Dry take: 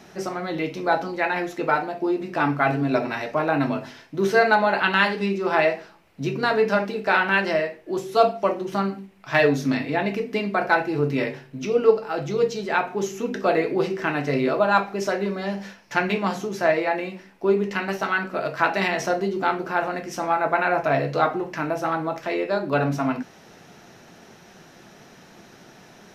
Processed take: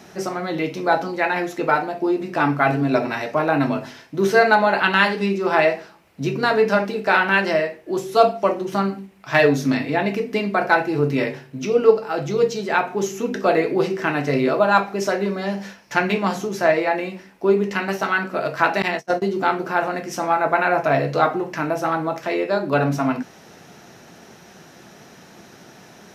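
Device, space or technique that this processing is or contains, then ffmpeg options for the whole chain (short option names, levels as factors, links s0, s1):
exciter from parts: -filter_complex "[0:a]asplit=2[s0][s1];[s1]highpass=4600,asoftclip=type=tanh:threshold=0.0447,volume=0.376[s2];[s0][s2]amix=inputs=2:normalize=0,asettb=1/sr,asplit=3[s3][s4][s5];[s3]atrim=end=18.824[s6];[s4]atrim=start=18.82:end=19.22,asetpts=PTS-STARTPTS,afade=t=in:d=0.004:c=qsin,afade=t=out:st=0.396:d=0.004:c=qsin,agate=range=0.0178:threshold=0.0708:ratio=16:detection=peak[s7];[s5]atrim=start=19.216[s8];[s6][s7]acrossfade=d=0.004:c1=hsin:c2=qsin[s9];[s9][s8]acrossfade=d=0.004:c1=qsin:c2=hsin,highpass=41,volume=1.41"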